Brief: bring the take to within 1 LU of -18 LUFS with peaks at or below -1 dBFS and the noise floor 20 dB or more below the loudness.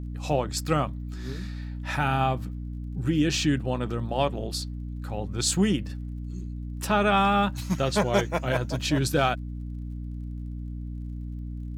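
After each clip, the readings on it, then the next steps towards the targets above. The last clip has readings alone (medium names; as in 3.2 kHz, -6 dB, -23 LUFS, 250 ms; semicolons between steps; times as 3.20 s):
tick rate 31 per s; hum 60 Hz; highest harmonic 300 Hz; hum level -32 dBFS; loudness -27.5 LUFS; peak level -8.5 dBFS; loudness target -18.0 LUFS
-> de-click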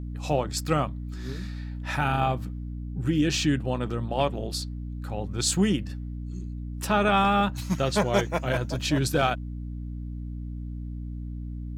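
tick rate 1.3 per s; hum 60 Hz; highest harmonic 300 Hz; hum level -32 dBFS
-> de-hum 60 Hz, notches 5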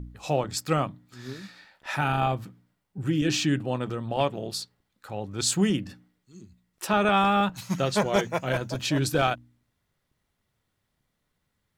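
hum not found; loudness -26.5 LUFS; peak level -8.5 dBFS; loudness target -18.0 LUFS
-> trim +8.5 dB; peak limiter -1 dBFS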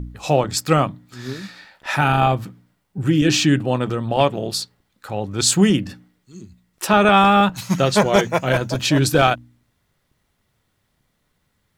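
loudness -18.0 LUFS; peak level -1.0 dBFS; noise floor -69 dBFS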